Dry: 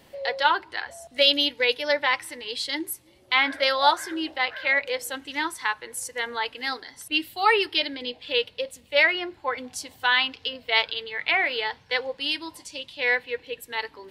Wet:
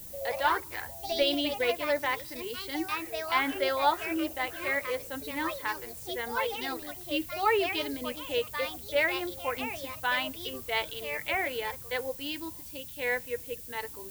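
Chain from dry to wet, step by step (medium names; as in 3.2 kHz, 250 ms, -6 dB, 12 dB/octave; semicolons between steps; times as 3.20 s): ever faster or slower copies 96 ms, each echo +3 st, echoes 2, each echo -6 dB; RIAA curve playback; added noise violet -39 dBFS; trim -6 dB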